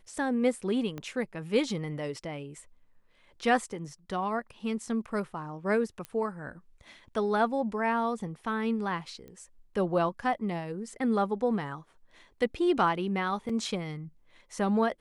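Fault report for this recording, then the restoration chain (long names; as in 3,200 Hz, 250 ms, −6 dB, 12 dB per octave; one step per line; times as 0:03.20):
0:00.98: click −24 dBFS
0:06.05: click −23 dBFS
0:09.28: click −34 dBFS
0:13.49: drop-out 4.6 ms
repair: click removal
repair the gap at 0:13.49, 4.6 ms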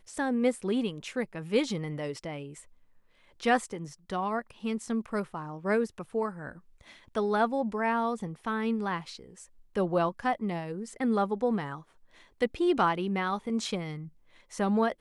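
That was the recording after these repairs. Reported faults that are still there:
0:00.98: click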